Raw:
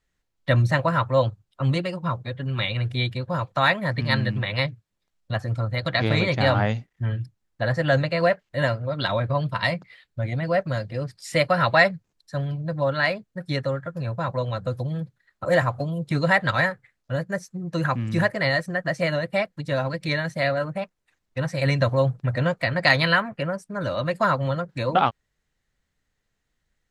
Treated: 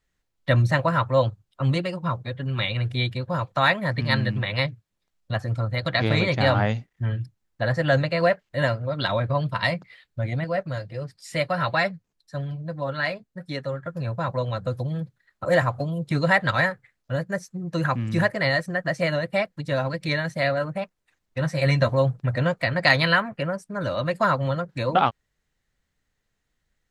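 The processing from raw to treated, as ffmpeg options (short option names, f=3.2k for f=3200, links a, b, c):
-filter_complex "[0:a]asettb=1/sr,asplit=3[a][b][c];[a]atrim=end=10.444[d];[b]atrim=start=10.44:end=13.86,asetpts=PTS-STARTPTS,afade=t=in:d=0.004:c=qsin,afade=t=out:st=3.416:d=0.004:c=qsin,flanger=delay=3.9:depth=2.9:regen=-54:speed=1.3:shape=sinusoidal[e];[c]atrim=start=13.856[f];[d][e]acrossfade=d=0.004:c1=hsin:c2=qsin[g];[g][f]acrossfade=d=0.004:c1=qsin:c2=hsin,asettb=1/sr,asplit=3[h][i][j];[h]atrim=end=21.384[k];[i]atrim=start=21.38:end=21.92,asetpts=PTS-STARTPTS,afade=t=in:d=0.004:c=qsin,afade=t=out:st=0.536:d=0.004:c=qsin,asplit=2[l][m];[m]adelay=13,volume=-7.5dB[n];[l][n]amix=inputs=2:normalize=0,atrim=end_sample=23814[o];[j]atrim=start=21.916[p];[k][o]acrossfade=d=0.004:c1=hsin:c2=qsin[q];[q][p]acrossfade=d=0.004:c1=qsin:c2=hsin"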